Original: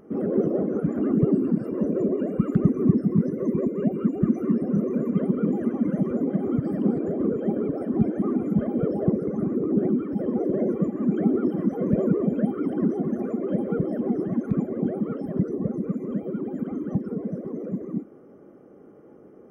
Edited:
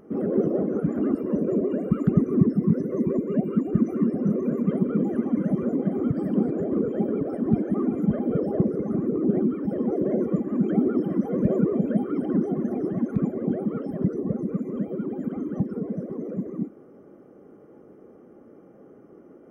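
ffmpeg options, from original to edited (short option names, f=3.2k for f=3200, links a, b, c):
-filter_complex "[0:a]asplit=3[a][b][c];[a]atrim=end=1.152[d];[b]atrim=start=1.628:end=13.252[e];[c]atrim=start=14.118[f];[d][e]acrossfade=d=0.004:c1=hsin:c2=hsin[g];[g][f]acrossfade=d=0.004:c1=hsin:c2=hsin"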